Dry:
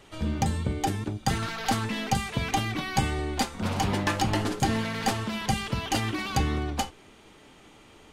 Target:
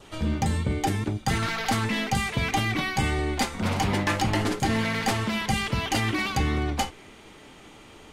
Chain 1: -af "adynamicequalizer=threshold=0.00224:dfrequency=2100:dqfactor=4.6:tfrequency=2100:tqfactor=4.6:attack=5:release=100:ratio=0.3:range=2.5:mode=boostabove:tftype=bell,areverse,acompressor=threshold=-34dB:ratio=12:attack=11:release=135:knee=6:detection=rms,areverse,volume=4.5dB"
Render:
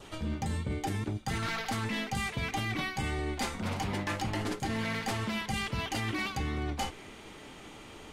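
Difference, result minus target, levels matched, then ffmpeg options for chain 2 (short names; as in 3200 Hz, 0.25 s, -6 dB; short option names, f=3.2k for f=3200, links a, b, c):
compressor: peak gain reduction +9.5 dB
-af "adynamicequalizer=threshold=0.00224:dfrequency=2100:dqfactor=4.6:tfrequency=2100:tqfactor=4.6:attack=5:release=100:ratio=0.3:range=2.5:mode=boostabove:tftype=bell,areverse,acompressor=threshold=-23.5dB:ratio=12:attack=11:release=135:knee=6:detection=rms,areverse,volume=4.5dB"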